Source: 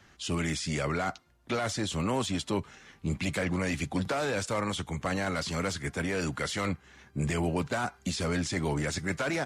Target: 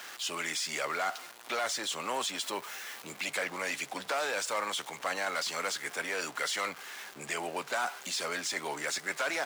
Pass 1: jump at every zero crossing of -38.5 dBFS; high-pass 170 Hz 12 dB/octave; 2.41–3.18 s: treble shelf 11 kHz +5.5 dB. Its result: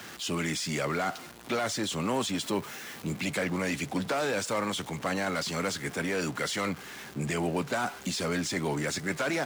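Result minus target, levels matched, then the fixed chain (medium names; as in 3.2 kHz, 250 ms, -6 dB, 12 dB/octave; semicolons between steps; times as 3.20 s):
125 Hz band +18.0 dB
jump at every zero crossing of -38.5 dBFS; high-pass 640 Hz 12 dB/octave; 2.41–3.18 s: treble shelf 11 kHz +5.5 dB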